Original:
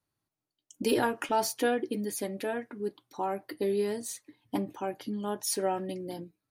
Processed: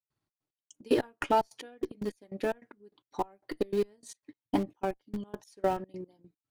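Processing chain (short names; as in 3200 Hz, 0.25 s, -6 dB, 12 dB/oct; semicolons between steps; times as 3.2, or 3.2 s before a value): air absorption 53 m; transient shaper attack +4 dB, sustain -7 dB; step gate ".xx.x..x.x." 149 bpm -24 dB; in parallel at -7 dB: Schmitt trigger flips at -30 dBFS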